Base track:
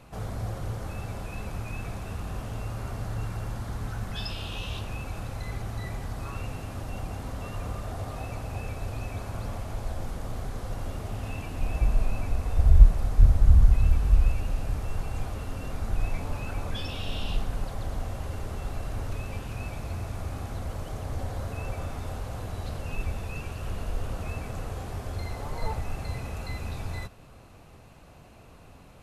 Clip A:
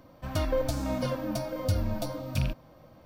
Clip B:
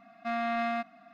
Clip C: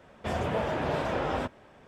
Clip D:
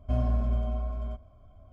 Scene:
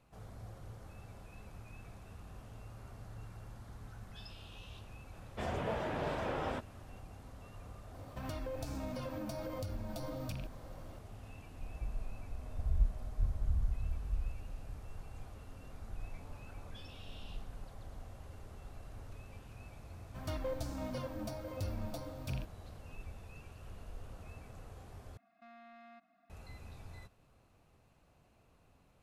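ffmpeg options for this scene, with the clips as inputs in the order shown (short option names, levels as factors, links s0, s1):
-filter_complex "[1:a]asplit=2[s0][s1];[0:a]volume=0.15[s2];[s0]acompressor=threshold=0.0141:ratio=6:attack=3.2:release=140:knee=1:detection=peak[s3];[4:a]acompressor=threshold=0.00708:ratio=6:attack=3.2:release=140:knee=1:detection=peak[s4];[s1]asoftclip=type=hard:threshold=0.0891[s5];[2:a]alimiter=level_in=2.82:limit=0.0631:level=0:latency=1:release=63,volume=0.355[s6];[s2]asplit=2[s7][s8];[s7]atrim=end=25.174[s9];[s6]atrim=end=1.13,asetpts=PTS-STARTPTS,volume=0.15[s10];[s8]atrim=start=26.296[s11];[3:a]atrim=end=1.87,asetpts=PTS-STARTPTS,volume=0.422,afade=t=in:d=0.004:c=hsin,afade=t=out:st=1.866:d=0.004:c=hsin,adelay=226233S[s12];[s3]atrim=end=3.05,asetpts=PTS-STARTPTS,volume=0.891,afade=t=in:d=0.004:c=hsin,afade=t=out:st=3.046:d=0.004:c=hsin,adelay=350154S[s13];[s4]atrim=end=1.72,asetpts=PTS-STARTPTS,volume=0.501,afade=t=in:d=0.004:c=hsin,afade=t=out:st=1.716:d=0.004:c=hsin,adelay=12330[s14];[s5]atrim=end=3.05,asetpts=PTS-STARTPTS,volume=0.299,afade=t=in:d=0.004:c=hsin,afade=t=out:st=3.046:d=0.004:c=hsin,adelay=19920[s15];[s9][s10]acrossfade=d=0.004:c1=hsin:c2=hsin[s16];[s16][s11]acrossfade=d=0.004:c1=hsin:c2=hsin[s17];[s17][s12][s13][s14][s15]amix=inputs=5:normalize=0"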